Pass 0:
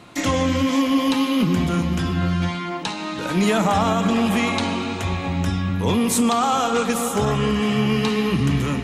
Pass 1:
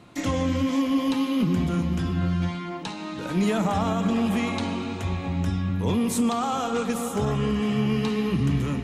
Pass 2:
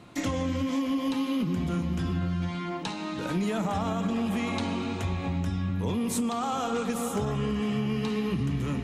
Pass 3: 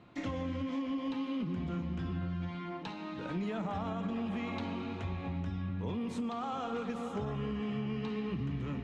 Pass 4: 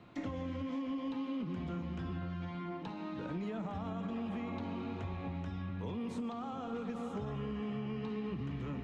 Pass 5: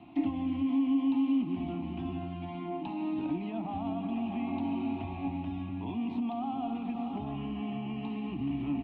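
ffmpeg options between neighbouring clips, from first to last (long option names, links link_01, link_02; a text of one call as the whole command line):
ffmpeg -i in.wav -af "lowshelf=frequency=490:gain=6,volume=-8.5dB" out.wav
ffmpeg -i in.wav -af "acompressor=threshold=-25dB:ratio=6" out.wav
ffmpeg -i in.wav -af "lowpass=3500,volume=-7.5dB" out.wav
ffmpeg -i in.wav -filter_complex "[0:a]acrossover=split=380|1400[link_01][link_02][link_03];[link_01]acompressor=threshold=-39dB:ratio=4[link_04];[link_02]acompressor=threshold=-46dB:ratio=4[link_05];[link_03]acompressor=threshold=-57dB:ratio=4[link_06];[link_04][link_05][link_06]amix=inputs=3:normalize=0,volume=1dB" out.wav
ffmpeg -i in.wav -af "firequalizer=gain_entry='entry(190,0);entry(290,14);entry(490,-15);entry(710,11);entry(1500,-12);entry(2600,8);entry(6600,-28)':delay=0.05:min_phase=1" out.wav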